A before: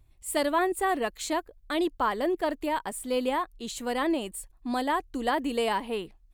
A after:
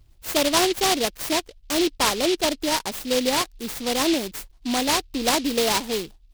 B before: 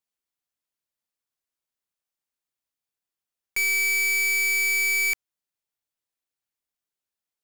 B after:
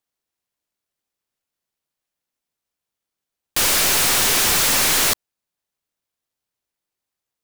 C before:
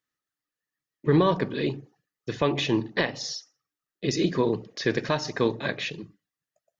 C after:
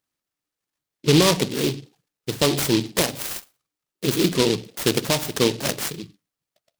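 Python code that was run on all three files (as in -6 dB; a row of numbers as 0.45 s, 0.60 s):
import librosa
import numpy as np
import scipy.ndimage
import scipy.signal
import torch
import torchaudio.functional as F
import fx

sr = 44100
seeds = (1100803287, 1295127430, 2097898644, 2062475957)

y = fx.noise_mod_delay(x, sr, seeds[0], noise_hz=3500.0, depth_ms=0.16)
y = y * 10.0 ** (-24 / 20.0) / np.sqrt(np.mean(np.square(y)))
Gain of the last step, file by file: +5.5 dB, +6.0 dB, +4.5 dB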